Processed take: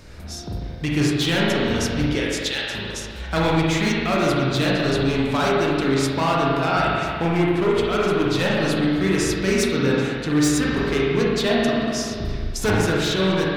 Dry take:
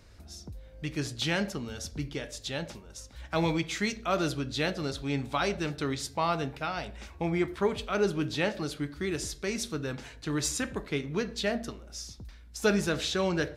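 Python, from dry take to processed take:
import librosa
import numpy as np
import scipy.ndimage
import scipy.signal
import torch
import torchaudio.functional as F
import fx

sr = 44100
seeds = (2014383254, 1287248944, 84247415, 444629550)

y = fx.octave_divider(x, sr, octaves=1, level_db=1.0, at=(12.13, 12.75))
y = np.clip(y, -10.0 ** (-27.5 / 20.0), 10.0 ** (-27.5 / 20.0))
y = fx.highpass(y, sr, hz=1400.0, slope=12, at=(2.2, 2.74))
y = fx.rev_spring(y, sr, rt60_s=2.0, pass_ms=(37, 47), chirp_ms=25, drr_db=-4.5)
y = fx.rider(y, sr, range_db=3, speed_s=0.5)
y = y * 10.0 ** (8.0 / 20.0)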